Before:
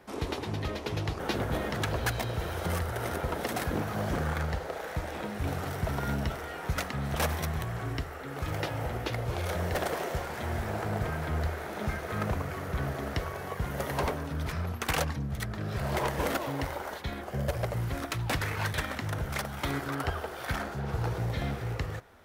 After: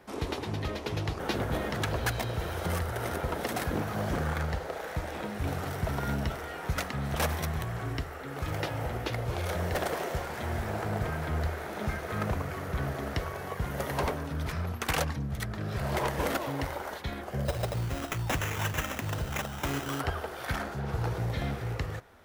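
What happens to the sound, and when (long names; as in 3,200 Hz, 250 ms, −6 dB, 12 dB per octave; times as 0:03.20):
0:17.45–0:20.00: sample-rate reduction 4,500 Hz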